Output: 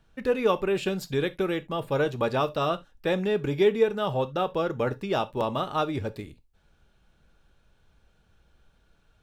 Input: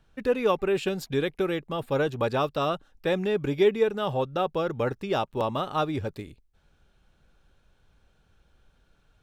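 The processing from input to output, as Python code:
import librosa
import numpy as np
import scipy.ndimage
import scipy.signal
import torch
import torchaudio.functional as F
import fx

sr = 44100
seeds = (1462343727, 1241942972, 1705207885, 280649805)

y = fx.rev_gated(x, sr, seeds[0], gate_ms=100, shape='falling', drr_db=11.0)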